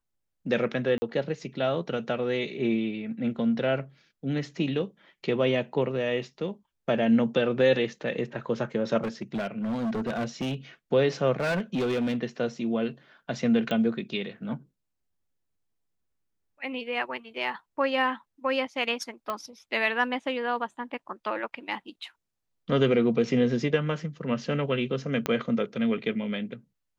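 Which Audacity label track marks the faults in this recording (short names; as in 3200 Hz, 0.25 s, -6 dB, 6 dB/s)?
0.980000	1.020000	gap 40 ms
9.030000	10.550000	clipped -26 dBFS
11.400000	12.160000	clipped -23.5 dBFS
13.710000	13.710000	pop -18 dBFS
19.300000	19.300000	pop -18 dBFS
25.260000	25.260000	pop -12 dBFS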